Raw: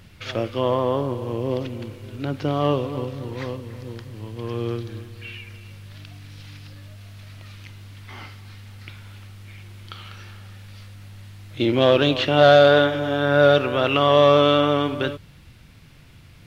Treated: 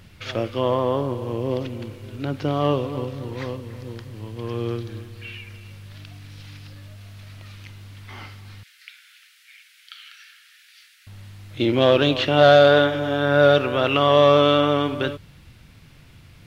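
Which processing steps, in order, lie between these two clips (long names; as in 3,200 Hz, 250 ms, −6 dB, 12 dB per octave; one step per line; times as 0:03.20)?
0:08.63–0:11.07: Butterworth high-pass 1,500 Hz 48 dB per octave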